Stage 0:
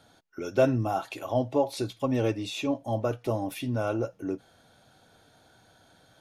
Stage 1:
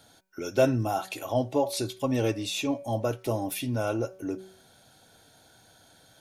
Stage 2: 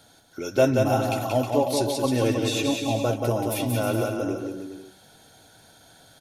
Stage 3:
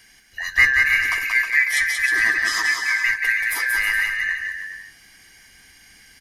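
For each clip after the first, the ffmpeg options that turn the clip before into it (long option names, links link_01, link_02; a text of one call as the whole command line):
ffmpeg -i in.wav -af "highshelf=frequency=4800:gain=10.5,bandreject=frequency=1200:width=11,bandreject=frequency=188.9:width_type=h:width=4,bandreject=frequency=377.8:width_type=h:width=4,bandreject=frequency=566.7:width_type=h:width=4,bandreject=frequency=755.6:width_type=h:width=4,bandreject=frequency=944.5:width_type=h:width=4,bandreject=frequency=1133.4:width_type=h:width=4,bandreject=frequency=1322.3:width_type=h:width=4,bandreject=frequency=1511.2:width_type=h:width=4,bandreject=frequency=1700.1:width_type=h:width=4,bandreject=frequency=1889:width_type=h:width=4,bandreject=frequency=2077.9:width_type=h:width=4,bandreject=frequency=2266.8:width_type=h:width=4,bandreject=frequency=2455.7:width_type=h:width=4" out.wav
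ffmpeg -i in.wav -af "aecho=1:1:180|315|416.2|492.2|549.1:0.631|0.398|0.251|0.158|0.1,volume=2.5dB" out.wav
ffmpeg -i in.wav -af "afftfilt=real='real(if(lt(b,272),68*(eq(floor(b/68),0)*1+eq(floor(b/68),1)*0+eq(floor(b/68),2)*3+eq(floor(b/68),3)*2)+mod(b,68),b),0)':imag='imag(if(lt(b,272),68*(eq(floor(b/68),0)*1+eq(floor(b/68),1)*0+eq(floor(b/68),2)*3+eq(floor(b/68),3)*2)+mod(b,68),b),0)':win_size=2048:overlap=0.75,volume=3.5dB" out.wav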